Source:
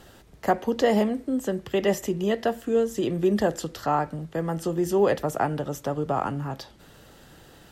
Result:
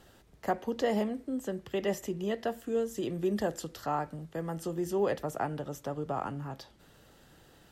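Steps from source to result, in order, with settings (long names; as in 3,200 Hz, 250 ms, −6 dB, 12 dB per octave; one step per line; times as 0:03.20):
0:02.50–0:04.84: high-shelf EQ 7,200 Hz +4.5 dB
level −8 dB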